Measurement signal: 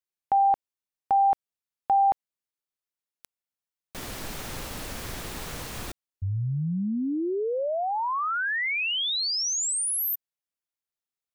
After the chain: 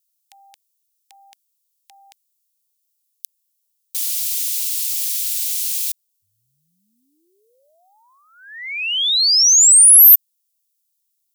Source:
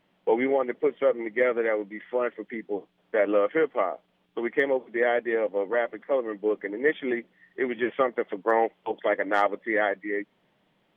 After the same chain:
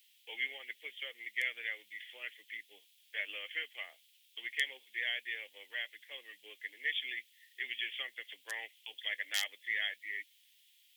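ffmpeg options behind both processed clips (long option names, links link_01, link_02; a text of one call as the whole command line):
ffmpeg -i in.wav -filter_complex "[0:a]aderivative,acrossover=split=370|500[link_01][link_02][link_03];[link_03]aexciter=amount=15.9:drive=6.6:freq=2000[link_04];[link_01][link_02][link_04]amix=inputs=3:normalize=0,volume=-11dB" out.wav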